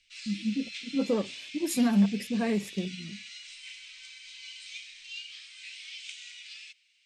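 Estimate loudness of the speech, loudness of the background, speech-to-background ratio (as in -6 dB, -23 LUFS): -29.5 LUFS, -42.0 LUFS, 12.5 dB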